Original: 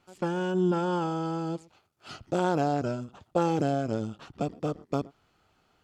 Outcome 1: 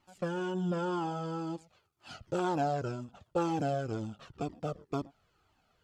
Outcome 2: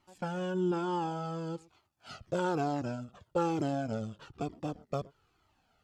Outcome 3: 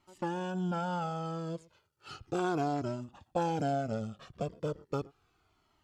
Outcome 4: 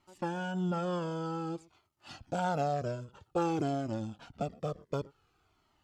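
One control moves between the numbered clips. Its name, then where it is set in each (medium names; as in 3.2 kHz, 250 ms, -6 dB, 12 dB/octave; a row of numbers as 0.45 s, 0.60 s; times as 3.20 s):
Shepard-style flanger, rate: 2 Hz, 1.1 Hz, 0.35 Hz, 0.53 Hz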